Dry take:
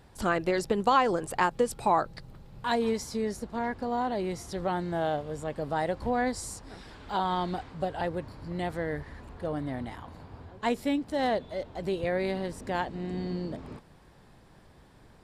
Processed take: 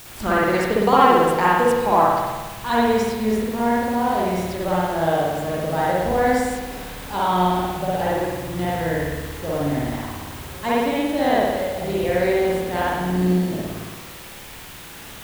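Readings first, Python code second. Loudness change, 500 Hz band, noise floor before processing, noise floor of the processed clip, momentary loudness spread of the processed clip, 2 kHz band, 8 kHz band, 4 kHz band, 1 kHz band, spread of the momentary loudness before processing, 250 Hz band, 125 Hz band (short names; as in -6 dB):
+10.0 dB, +10.0 dB, -56 dBFS, -39 dBFS, 15 LU, +10.0 dB, +8.0 dB, +9.0 dB, +10.0 dB, 13 LU, +10.0 dB, +10.5 dB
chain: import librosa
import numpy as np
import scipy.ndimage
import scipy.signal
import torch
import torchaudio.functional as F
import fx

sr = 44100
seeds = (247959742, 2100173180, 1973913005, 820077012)

p1 = fx.quant_dither(x, sr, seeds[0], bits=6, dither='triangular')
p2 = x + (p1 * librosa.db_to_amplitude(-3.5))
p3 = fx.rev_spring(p2, sr, rt60_s=1.3, pass_ms=(55,), chirp_ms=45, drr_db=-7.0)
y = p3 * librosa.db_to_amplitude(-2.5)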